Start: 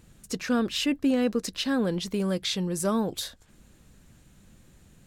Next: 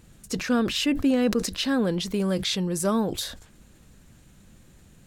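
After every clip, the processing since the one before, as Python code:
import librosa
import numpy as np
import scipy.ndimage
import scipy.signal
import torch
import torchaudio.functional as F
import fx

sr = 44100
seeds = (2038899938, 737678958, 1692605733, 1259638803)

y = fx.sustainer(x, sr, db_per_s=91.0)
y = y * librosa.db_to_amplitude(2.0)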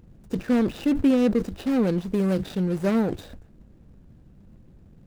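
y = scipy.ndimage.median_filter(x, 41, mode='constant')
y = y * librosa.db_to_amplitude(3.0)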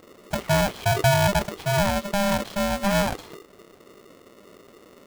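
y = x * np.sign(np.sin(2.0 * np.pi * 400.0 * np.arange(len(x)) / sr))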